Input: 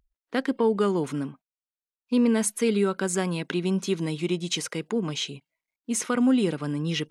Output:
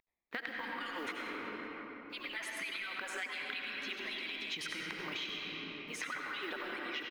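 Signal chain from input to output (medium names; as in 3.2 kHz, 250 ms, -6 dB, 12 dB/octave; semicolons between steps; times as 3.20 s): harmonic-percussive separation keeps percussive; treble shelf 3.3 kHz -9 dB; transient shaper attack -2 dB, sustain +11 dB; companded quantiser 6-bit; graphic EQ 125/250/500/2000/4000/8000 Hz -7/-3/-5/+11/+6/-10 dB; feedback delay 188 ms, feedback 40%, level -18.5 dB; reverberation RT60 3.4 s, pre-delay 70 ms, DRR -0.5 dB; compression, threshold -33 dBFS, peak gain reduction 13 dB; trim -4.5 dB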